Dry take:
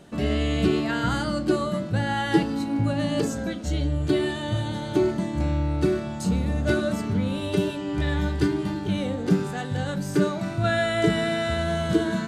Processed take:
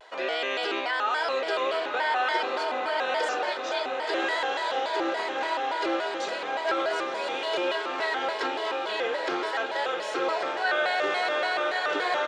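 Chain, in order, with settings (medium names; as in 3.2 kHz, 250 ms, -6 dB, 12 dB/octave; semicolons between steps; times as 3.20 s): high-pass 590 Hz 24 dB/octave; comb 2.2 ms, depth 33%; in parallel at -1 dB: compressor with a negative ratio -34 dBFS; on the sum: distance through air 160 m; echo that smears into a reverb 1079 ms, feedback 63%, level -5 dB; vibrato with a chosen wave square 3.5 Hz, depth 160 cents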